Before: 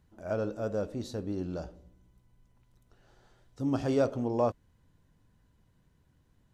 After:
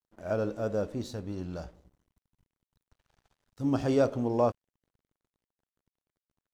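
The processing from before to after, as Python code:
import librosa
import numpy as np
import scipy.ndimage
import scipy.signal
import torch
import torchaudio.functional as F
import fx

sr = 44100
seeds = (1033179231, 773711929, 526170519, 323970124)

y = fx.peak_eq(x, sr, hz=350.0, db=-6.0, octaves=1.6, at=(1.14, 3.64))
y = np.sign(y) * np.maximum(np.abs(y) - 10.0 ** (-59.5 / 20.0), 0.0)
y = y * 10.0 ** (2.0 / 20.0)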